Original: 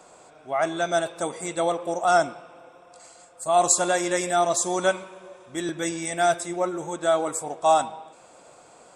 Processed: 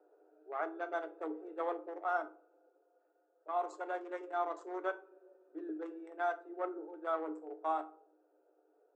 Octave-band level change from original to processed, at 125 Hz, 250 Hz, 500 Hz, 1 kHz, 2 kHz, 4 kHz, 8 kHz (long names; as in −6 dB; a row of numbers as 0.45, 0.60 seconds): below −40 dB, −13.5 dB, −15.5 dB, −14.0 dB, −14.5 dB, −28.5 dB, below −40 dB